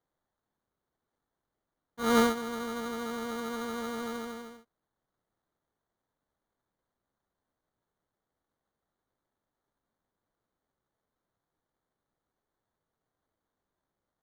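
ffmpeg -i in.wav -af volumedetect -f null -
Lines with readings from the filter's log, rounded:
mean_volume: -39.2 dB
max_volume: -13.2 dB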